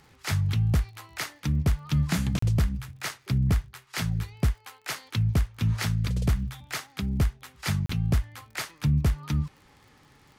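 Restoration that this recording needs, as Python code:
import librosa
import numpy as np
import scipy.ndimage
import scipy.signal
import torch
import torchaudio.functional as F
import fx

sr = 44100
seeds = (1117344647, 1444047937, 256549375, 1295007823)

y = fx.fix_declick_ar(x, sr, threshold=6.5)
y = fx.fix_interpolate(y, sr, at_s=(2.39, 7.86), length_ms=34.0)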